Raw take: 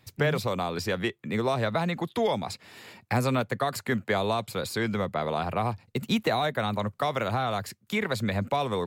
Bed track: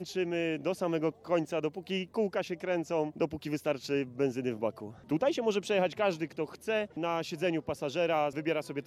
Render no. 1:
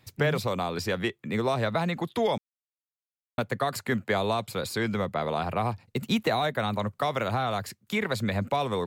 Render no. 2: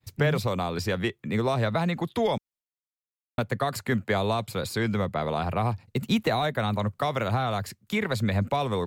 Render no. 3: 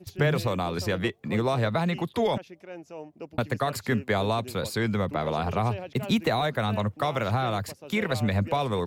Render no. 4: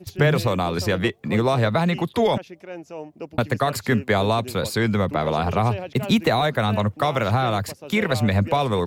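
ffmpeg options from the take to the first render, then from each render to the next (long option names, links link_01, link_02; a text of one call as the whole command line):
ffmpeg -i in.wav -filter_complex "[0:a]asplit=3[link_01][link_02][link_03];[link_01]atrim=end=2.38,asetpts=PTS-STARTPTS,afade=type=out:start_time=2.376:duration=0.004:curve=hsin[link_04];[link_02]atrim=start=2.38:end=3.38,asetpts=PTS-STARTPTS,volume=0[link_05];[link_03]atrim=start=3.38,asetpts=PTS-STARTPTS,afade=type=in:duration=0.004:curve=hsin[link_06];[link_04][link_05][link_06]concat=n=3:v=0:a=1" out.wav
ffmpeg -i in.wav -af "agate=range=-33dB:threshold=-56dB:ratio=3:detection=peak,lowshelf=frequency=110:gain=9.5" out.wav
ffmpeg -i in.wav -i bed.wav -filter_complex "[1:a]volume=-10dB[link_01];[0:a][link_01]amix=inputs=2:normalize=0" out.wav
ffmpeg -i in.wav -af "volume=5.5dB" out.wav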